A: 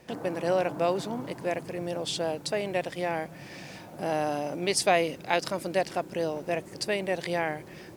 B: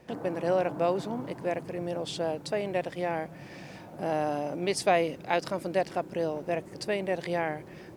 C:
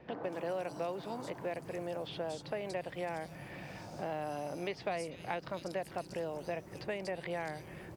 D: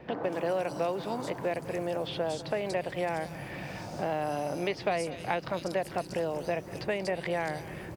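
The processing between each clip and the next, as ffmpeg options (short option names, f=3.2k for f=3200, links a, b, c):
-af "highshelf=f=2.4k:g=-7.5"
-filter_complex "[0:a]asubboost=boost=2.5:cutoff=170,acrossover=split=4000[a][b];[b]adelay=240[c];[a][c]amix=inputs=2:normalize=0,acrossover=split=380|3300[d][e][f];[d]acompressor=threshold=-48dB:ratio=4[g];[e]acompressor=threshold=-37dB:ratio=4[h];[f]acompressor=threshold=-54dB:ratio=4[i];[g][h][i]amix=inputs=3:normalize=0"
-af "aecho=1:1:199:0.141,volume=7dB"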